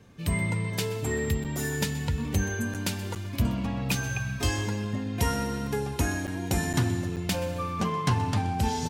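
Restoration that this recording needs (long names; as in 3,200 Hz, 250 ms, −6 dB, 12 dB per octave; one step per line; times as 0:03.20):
repair the gap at 0:01.44/0:02.74/0:03.15/0:06.27/0:06.73/0:07.16, 7.2 ms
echo removal 126 ms −17 dB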